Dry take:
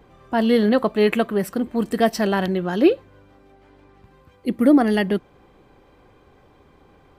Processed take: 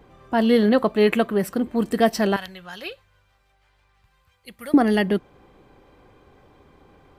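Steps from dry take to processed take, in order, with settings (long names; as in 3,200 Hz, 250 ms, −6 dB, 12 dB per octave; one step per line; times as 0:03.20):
0:02.36–0:04.74: guitar amp tone stack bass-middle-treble 10-0-10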